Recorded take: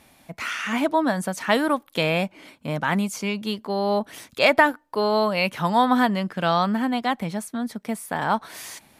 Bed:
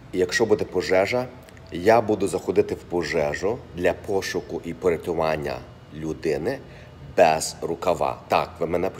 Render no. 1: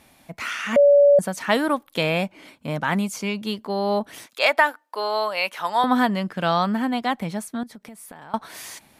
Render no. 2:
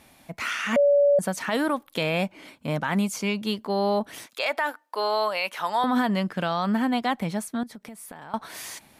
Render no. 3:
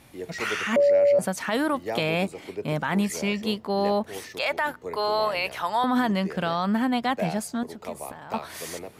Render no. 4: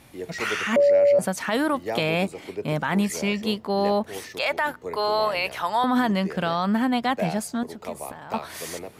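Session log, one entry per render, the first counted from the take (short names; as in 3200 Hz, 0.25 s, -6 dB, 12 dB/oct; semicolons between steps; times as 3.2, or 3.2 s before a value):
0.76–1.19 bleep 572 Hz -10 dBFS; 4.26–5.84 HPF 600 Hz; 7.63–8.34 compressor 16:1, threshold -37 dBFS
limiter -15 dBFS, peak gain reduction 11.5 dB
add bed -14.5 dB
gain +1.5 dB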